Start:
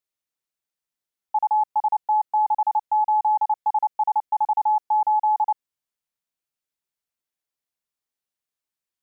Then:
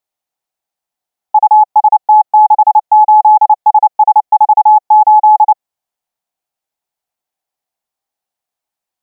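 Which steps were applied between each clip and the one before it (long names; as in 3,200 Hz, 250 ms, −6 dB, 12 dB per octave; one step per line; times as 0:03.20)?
parametric band 760 Hz +13.5 dB 0.65 octaves
level +4 dB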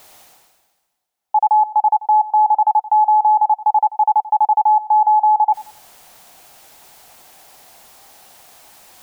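reversed playback
upward compression, threshold −21 dBFS
reversed playback
brickwall limiter −11 dBFS, peak gain reduction 9.5 dB
feedback echo with a high-pass in the loop 90 ms, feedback 39%, high-pass 690 Hz, level −15 dB
level +2.5 dB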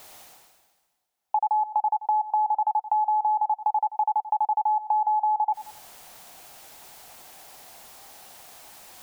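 downward compressor 6 to 1, threshold −20 dBFS, peak gain reduction 9 dB
level −1.5 dB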